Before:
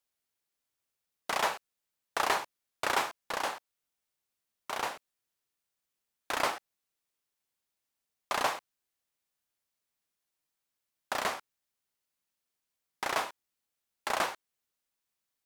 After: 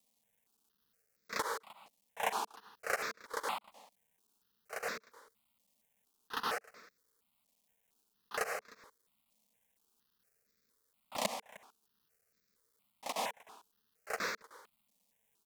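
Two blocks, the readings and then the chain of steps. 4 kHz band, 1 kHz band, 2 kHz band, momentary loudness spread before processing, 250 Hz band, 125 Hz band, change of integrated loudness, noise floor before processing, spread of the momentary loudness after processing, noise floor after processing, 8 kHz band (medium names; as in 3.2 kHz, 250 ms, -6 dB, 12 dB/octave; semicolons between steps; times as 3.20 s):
-6.5 dB, -7.0 dB, -5.0 dB, 14 LU, -5.0 dB, -5.0 dB, -6.0 dB, under -85 dBFS, 21 LU, -80 dBFS, -4.0 dB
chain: bass shelf 490 Hz -8 dB; in parallel at +0.5 dB: peak limiter -25 dBFS, peak gain reduction 11 dB; on the sum: slow attack 285 ms; bit crusher 12-bit; small resonant body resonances 210/450 Hz, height 12 dB, ringing for 50 ms; on a send: delay 307 ms -21 dB; on the sum: stepped phaser 4.3 Hz 400–3000 Hz; trim +7 dB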